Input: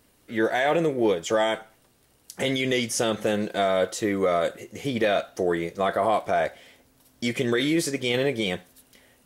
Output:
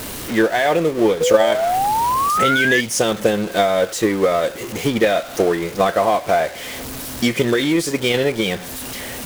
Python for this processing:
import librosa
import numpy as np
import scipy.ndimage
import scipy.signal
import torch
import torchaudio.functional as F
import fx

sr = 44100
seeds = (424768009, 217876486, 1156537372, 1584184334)

y = x + 0.5 * 10.0 ** (-27.0 / 20.0) * np.sign(x)
y = fx.spec_paint(y, sr, seeds[0], shape='rise', start_s=1.2, length_s=1.61, low_hz=470.0, high_hz=1800.0, level_db=-21.0)
y = fx.transient(y, sr, attack_db=7, sustain_db=-5)
y = y * 10.0 ** (3.0 / 20.0)